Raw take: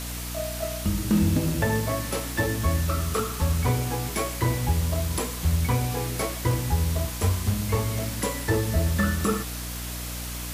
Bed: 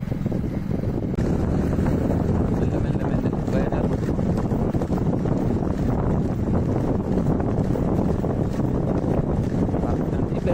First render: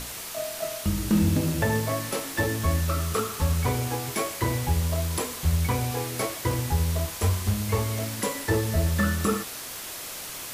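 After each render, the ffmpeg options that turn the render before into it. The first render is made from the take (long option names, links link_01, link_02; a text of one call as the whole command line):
ffmpeg -i in.wav -af "bandreject=frequency=60:width_type=h:width=6,bandreject=frequency=120:width_type=h:width=6,bandreject=frequency=180:width_type=h:width=6,bandreject=frequency=240:width_type=h:width=6,bandreject=frequency=300:width_type=h:width=6" out.wav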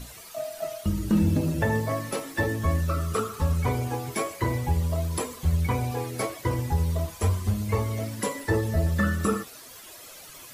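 ffmpeg -i in.wav -af "afftdn=noise_reduction=12:noise_floor=-37" out.wav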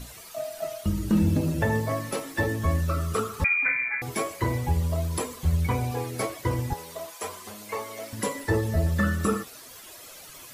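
ffmpeg -i in.wav -filter_complex "[0:a]asettb=1/sr,asplit=3[link_01][link_02][link_03];[link_01]atrim=end=3.444[link_04];[link_02]atrim=start=3.44:end=4.02,asetpts=PTS-STARTPTS,afade=type=in:duration=0.004:curve=qsin,afade=type=out:start_time=0.576:duration=0.004:curve=qsin,lowpass=frequency=2100:width_type=q:width=0.5098,lowpass=frequency=2100:width_type=q:width=0.6013,lowpass=frequency=2100:width_type=q:width=0.9,lowpass=frequency=2100:width_type=q:width=2.563,afreqshift=-2500[link_05];[link_03]atrim=start=4.016[link_06];[link_04][link_05]acrossfade=duration=0.004:curve1=hsin:curve2=qsin[link_07];[link_07][link_06]acrossfade=duration=0.004:curve1=qsin:curve2=hsin,asettb=1/sr,asplit=3[link_08][link_09][link_10];[link_08]atrim=end=6.734[link_11];[link_09]atrim=start=6.73:end=8.13,asetpts=PTS-STARTPTS,afade=type=in:duration=0.004:curve=qsin,afade=type=out:start_time=1.396:duration=0.004:curve=qsin,highpass=510[link_12];[link_10]atrim=start=8.126[link_13];[link_11][link_12]acrossfade=duration=0.004:curve1=hsin:curve2=qsin[link_14];[link_14][link_13]acrossfade=duration=0.004:curve1=qsin:curve2=hsin" out.wav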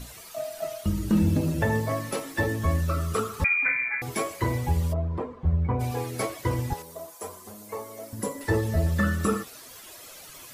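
ffmpeg -i in.wav -filter_complex "[0:a]asplit=3[link_01][link_02][link_03];[link_01]afade=type=out:start_time=4.92:duration=0.02[link_04];[link_02]lowpass=1100,afade=type=in:start_time=4.92:duration=0.02,afade=type=out:start_time=5.79:duration=0.02[link_05];[link_03]afade=type=in:start_time=5.79:duration=0.02[link_06];[link_04][link_05][link_06]amix=inputs=3:normalize=0,asettb=1/sr,asplit=3[link_07][link_08][link_09];[link_07]atrim=end=6.824[link_10];[link_08]atrim=start=6.82:end=8.41,asetpts=PTS-STARTPTS,afade=type=in:duration=0.004:curve=qsin,afade=type=out:start_time=1.586:duration=0.004:curve=qsin,equalizer=frequency=2700:width=0.56:gain=-12[link_11];[link_09]atrim=start=8.406[link_12];[link_10][link_11]acrossfade=duration=0.004:curve1=hsin:curve2=qsin[link_13];[link_13][link_12]acrossfade=duration=0.004:curve1=qsin:curve2=hsin" out.wav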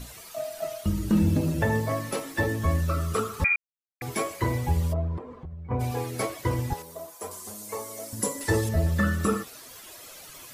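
ffmpeg -i in.wav -filter_complex "[0:a]asplit=3[link_01][link_02][link_03];[link_01]afade=type=out:start_time=5.17:duration=0.02[link_04];[link_02]acompressor=threshold=-36dB:ratio=10:attack=3.2:release=140:knee=1:detection=peak,afade=type=in:start_time=5.17:duration=0.02,afade=type=out:start_time=5.7:duration=0.02[link_05];[link_03]afade=type=in:start_time=5.7:duration=0.02[link_06];[link_04][link_05][link_06]amix=inputs=3:normalize=0,asettb=1/sr,asplit=3[link_07][link_08][link_09];[link_07]atrim=end=7.314[link_10];[link_08]atrim=start=7.31:end=8.69,asetpts=PTS-STARTPTS,afade=type=in:duration=0.004:curve=qsin,afade=type=out:start_time=1.376:duration=0.004:curve=qsin,equalizer=frequency=7800:width=0.51:gain=9.5[link_11];[link_09]atrim=start=8.686[link_12];[link_10][link_11]acrossfade=duration=0.004:curve1=hsin:curve2=qsin[link_13];[link_13][link_12]acrossfade=duration=0.004:curve1=qsin:curve2=hsin,asplit=3[link_14][link_15][link_16];[link_14]atrim=end=3.56,asetpts=PTS-STARTPTS,afade=type=out:start_time=3.556:duration=0.004:curve=hsin[link_17];[link_15]atrim=start=3.56:end=4.01,asetpts=PTS-STARTPTS,volume=0[link_18];[link_16]atrim=start=4.01,asetpts=PTS-STARTPTS,afade=type=in:duration=0.004:curve=hsin[link_19];[link_17][link_18][link_19]concat=n=3:v=0:a=1" out.wav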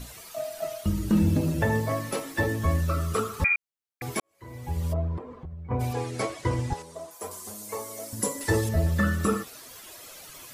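ffmpeg -i in.wav -filter_complex "[0:a]asettb=1/sr,asplit=3[link_01][link_02][link_03];[link_01]atrim=end=5.934[link_04];[link_02]atrim=start=5.93:end=7.11,asetpts=PTS-STARTPTS,afade=type=in:duration=0.004:curve=qsin,afade=type=out:start_time=1.176:duration=0.004:curve=qsin,lowpass=frequency=9300:width=0.5412,lowpass=frequency=9300:width=1.3066[link_05];[link_03]atrim=start=7.106[link_06];[link_04][link_05]acrossfade=duration=0.004:curve1=hsin:curve2=qsin[link_07];[link_07][link_06]acrossfade=duration=0.004:curve1=qsin:curve2=hsin,asplit=2[link_08][link_09];[link_08]atrim=end=4.2,asetpts=PTS-STARTPTS,afade=type=out:start_time=4.196:duration=0.004:curve=hsin[link_10];[link_09]atrim=start=4.2,asetpts=PTS-STARTPTS,afade=type=in:duration=0.75:curve=qua[link_11];[link_10][link_11]concat=n=2:v=0:a=1" out.wav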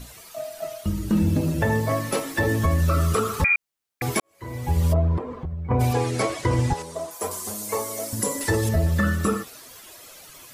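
ffmpeg -i in.wav -af "dynaudnorm=framelen=320:gausssize=13:maxgain=9dB,alimiter=limit=-12dB:level=0:latency=1:release=100" out.wav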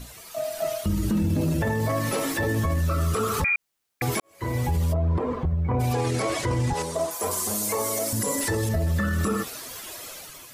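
ffmpeg -i in.wav -af "alimiter=limit=-23.5dB:level=0:latency=1:release=47,dynaudnorm=framelen=120:gausssize=7:maxgain=6.5dB" out.wav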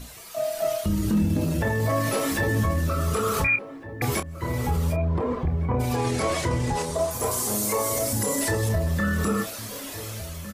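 ffmpeg -i in.wav -filter_complex "[0:a]asplit=2[link_01][link_02];[link_02]adelay=29,volume=-8dB[link_03];[link_01][link_03]amix=inputs=2:normalize=0,asplit=2[link_04][link_05];[link_05]adelay=1458,volume=-12dB,highshelf=frequency=4000:gain=-32.8[link_06];[link_04][link_06]amix=inputs=2:normalize=0" out.wav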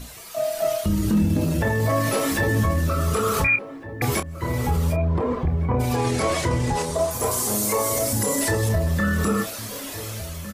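ffmpeg -i in.wav -af "volume=2.5dB" out.wav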